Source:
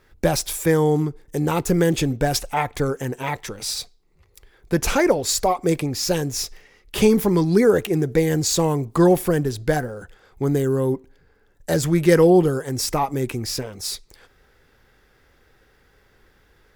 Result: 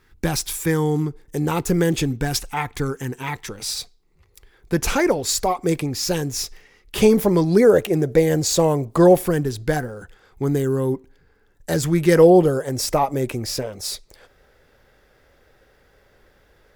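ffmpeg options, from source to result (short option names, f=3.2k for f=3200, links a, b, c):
-af "asetnsamples=n=441:p=0,asendcmd='1.06 equalizer g -3.5;2.06 equalizer g -13.5;3.49 equalizer g -3;7.03 equalizer g 8.5;9.26 equalizer g -3;12.16 equalizer g 8.5',equalizer=f=590:t=o:w=0.51:g=-12.5"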